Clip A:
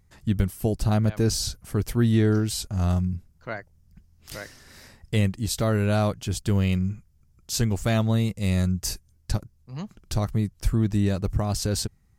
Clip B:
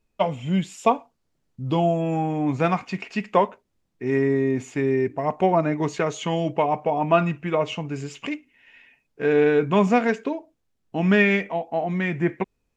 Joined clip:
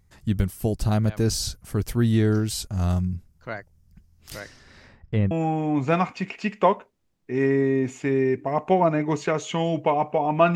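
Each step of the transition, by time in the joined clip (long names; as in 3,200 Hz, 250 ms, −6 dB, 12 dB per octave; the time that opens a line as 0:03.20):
clip A
0:04.39–0:05.31: low-pass filter 8,200 Hz → 1,300 Hz
0:05.31: continue with clip B from 0:02.03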